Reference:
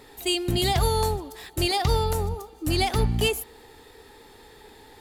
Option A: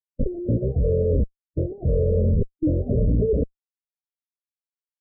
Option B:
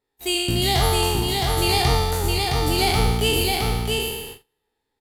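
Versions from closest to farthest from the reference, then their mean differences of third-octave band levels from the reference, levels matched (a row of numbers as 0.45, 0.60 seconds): B, A; 11.5, 21.0 decibels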